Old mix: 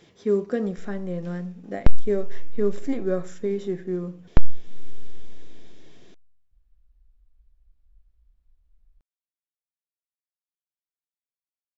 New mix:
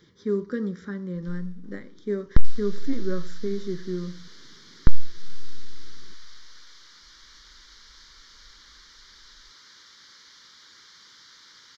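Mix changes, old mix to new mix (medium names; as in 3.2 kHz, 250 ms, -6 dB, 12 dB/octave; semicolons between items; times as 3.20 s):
first sound: entry +0.50 s; second sound: unmuted; master: add static phaser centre 2.6 kHz, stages 6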